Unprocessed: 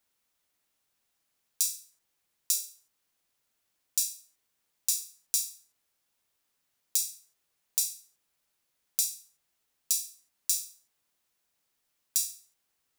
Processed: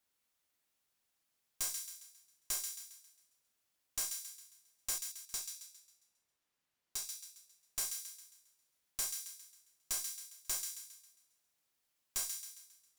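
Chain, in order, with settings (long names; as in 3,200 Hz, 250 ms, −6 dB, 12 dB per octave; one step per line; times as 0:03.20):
0:04.98–0:07.10: high-shelf EQ 5,300 Hz −9 dB
tube saturation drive 27 dB, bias 0.45
delay with a high-pass on its return 135 ms, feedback 43%, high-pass 1,700 Hz, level −6.5 dB
level −3 dB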